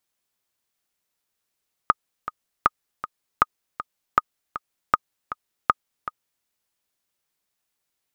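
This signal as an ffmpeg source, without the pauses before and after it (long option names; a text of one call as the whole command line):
ffmpeg -f lavfi -i "aevalsrc='pow(10,(-2-13.5*gte(mod(t,2*60/158),60/158))/20)*sin(2*PI*1240*mod(t,60/158))*exp(-6.91*mod(t,60/158)/0.03)':duration=4.55:sample_rate=44100" out.wav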